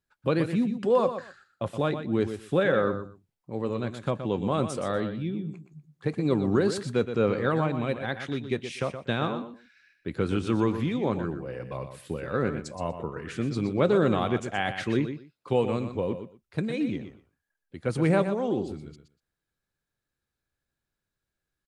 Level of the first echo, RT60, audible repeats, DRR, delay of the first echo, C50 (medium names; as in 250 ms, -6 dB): -9.5 dB, no reverb, 2, no reverb, 121 ms, no reverb